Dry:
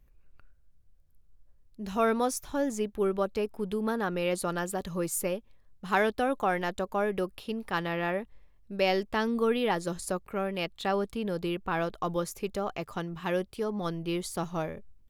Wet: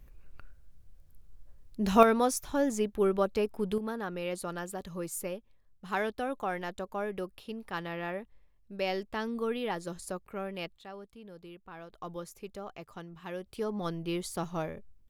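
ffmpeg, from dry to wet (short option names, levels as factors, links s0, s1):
-af "asetnsamples=n=441:p=0,asendcmd='2.03 volume volume 1dB;3.78 volume volume -6dB;10.78 volume volume -17dB;11.93 volume volume -10dB;13.46 volume volume -2dB',volume=2.51"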